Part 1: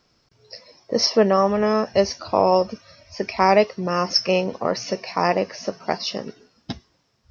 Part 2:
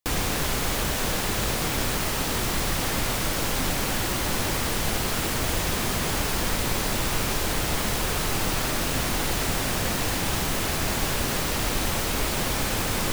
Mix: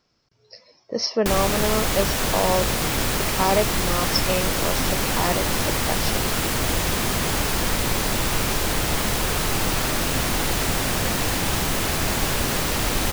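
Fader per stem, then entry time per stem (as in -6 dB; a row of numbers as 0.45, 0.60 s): -5.0, +3.0 dB; 0.00, 1.20 s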